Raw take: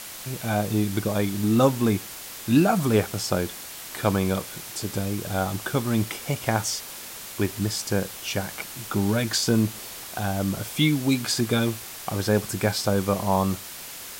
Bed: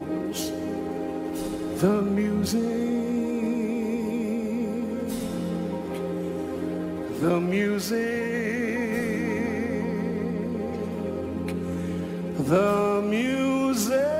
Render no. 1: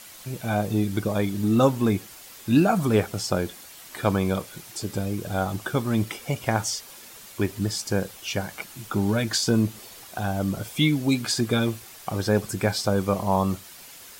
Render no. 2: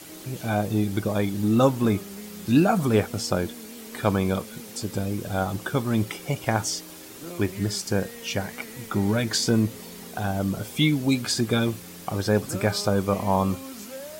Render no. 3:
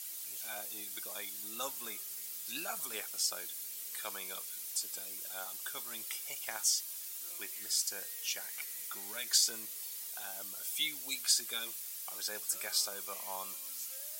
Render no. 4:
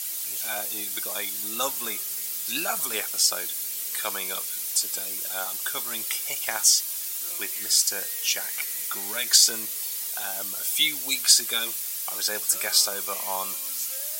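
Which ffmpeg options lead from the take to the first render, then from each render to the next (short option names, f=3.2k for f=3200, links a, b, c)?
-af "afftdn=nr=8:nf=-39"
-filter_complex "[1:a]volume=-16dB[a];[0:a][a]amix=inputs=2:normalize=0"
-af "highpass=f=400:p=1,aderivative"
-af "volume=12dB,alimiter=limit=-3dB:level=0:latency=1"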